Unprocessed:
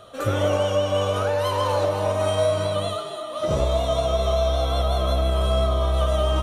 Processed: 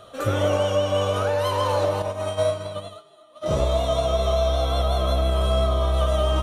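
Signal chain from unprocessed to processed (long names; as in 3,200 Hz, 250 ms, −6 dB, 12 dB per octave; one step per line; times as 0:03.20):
0:02.02–0:03.46: expander for the loud parts 2.5 to 1, over −32 dBFS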